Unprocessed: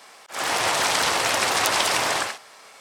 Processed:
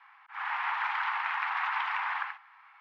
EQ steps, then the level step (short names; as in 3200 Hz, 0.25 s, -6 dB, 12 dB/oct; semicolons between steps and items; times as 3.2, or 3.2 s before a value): steep high-pass 830 Hz 72 dB/oct; LPF 2200 Hz 24 dB/oct; -5.5 dB